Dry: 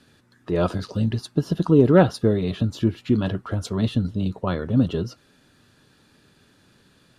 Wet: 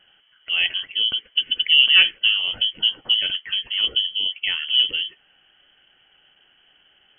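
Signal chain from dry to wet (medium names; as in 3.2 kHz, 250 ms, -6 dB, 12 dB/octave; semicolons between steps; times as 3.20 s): frequency inversion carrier 3.2 kHz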